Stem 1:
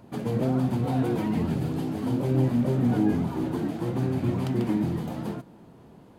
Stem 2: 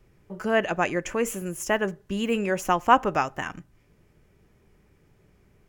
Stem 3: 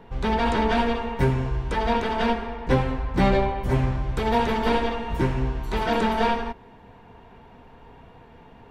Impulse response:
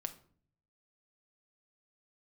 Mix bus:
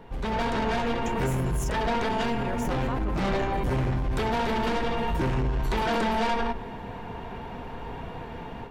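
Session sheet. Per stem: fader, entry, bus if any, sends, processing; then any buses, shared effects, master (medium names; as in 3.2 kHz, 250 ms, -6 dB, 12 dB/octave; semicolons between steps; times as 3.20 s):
-11.5 dB, 0.00 s, bus A, no send, none
-8.0 dB, 0.00 s, no bus, no send, compression, threshold -30 dBFS, peak gain reduction 18 dB
-3.0 dB, 0.00 s, bus A, send -5.5 dB, saturation -24 dBFS, distortion -8 dB
bus A: 0.0 dB, compression, threshold -33 dBFS, peak gain reduction 7.5 dB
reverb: on, RT60 0.50 s, pre-delay 6 ms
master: level rider gain up to 11 dB; peak limiter -20.5 dBFS, peak gain reduction 10 dB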